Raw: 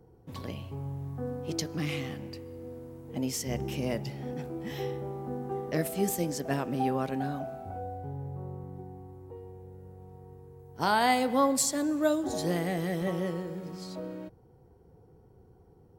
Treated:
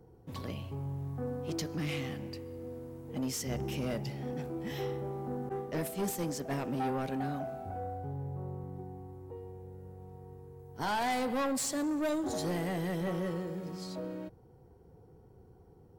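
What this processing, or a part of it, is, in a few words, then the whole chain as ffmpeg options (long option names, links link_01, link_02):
saturation between pre-emphasis and de-emphasis: -filter_complex "[0:a]highshelf=frequency=10000:gain=10,asoftclip=type=tanh:threshold=-28dB,highshelf=frequency=10000:gain=-10,asettb=1/sr,asplit=3[link_01][link_02][link_03];[link_01]atrim=end=5.494[link_04];[link_02]atrim=start=5.49:end=6.57,asetpts=PTS-STARTPTS,afade=type=in:duration=0.004:curve=qsin,afade=type=out:start_time=1.076:duration=0.004:curve=qsin,agate=range=-33dB:threshold=-34dB:ratio=3:detection=peak[link_05];[link_03]atrim=start=6.566[link_06];[link_04][link_05]acrossfade=duration=0.004:curve1=hsin:curve2=qsin[link_07];[link_07][link_06]acrossfade=duration=0.004:curve1=qsin:curve2=hsin"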